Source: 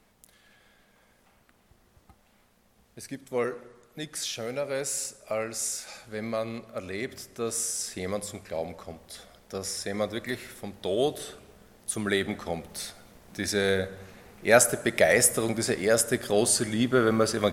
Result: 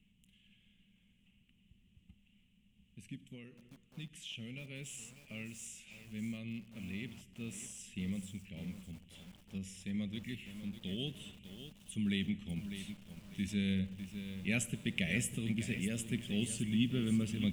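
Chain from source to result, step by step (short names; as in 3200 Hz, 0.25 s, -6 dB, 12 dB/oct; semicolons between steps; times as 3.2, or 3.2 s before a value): 3.29–4.39 compressor 5:1, threshold -33 dBFS, peak gain reduction 9.5 dB; EQ curve 130 Hz 0 dB, 190 Hz +6 dB, 320 Hz -12 dB, 650 Hz -27 dB, 1500 Hz -25 dB, 2900 Hz +7 dB, 4500 Hz -23 dB, 7600 Hz -11 dB, 11000 Hz -18 dB; lo-fi delay 0.601 s, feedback 35%, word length 8-bit, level -10 dB; gain -4 dB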